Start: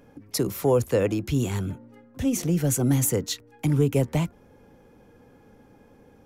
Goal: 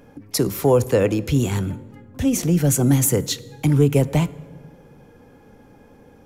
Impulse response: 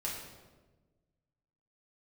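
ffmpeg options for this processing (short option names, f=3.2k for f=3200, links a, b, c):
-filter_complex "[0:a]asplit=2[a][b];[1:a]atrim=start_sample=2205,asetrate=37485,aresample=44100[c];[b][c]afir=irnorm=-1:irlink=0,volume=-19dB[d];[a][d]amix=inputs=2:normalize=0,volume=4.5dB"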